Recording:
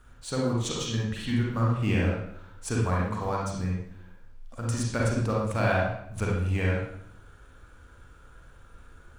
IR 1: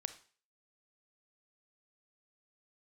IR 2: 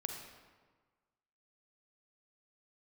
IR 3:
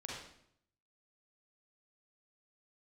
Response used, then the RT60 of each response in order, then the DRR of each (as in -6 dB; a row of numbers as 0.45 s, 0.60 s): 3; 0.40 s, 1.4 s, 0.70 s; 10.5 dB, 3.0 dB, -4.0 dB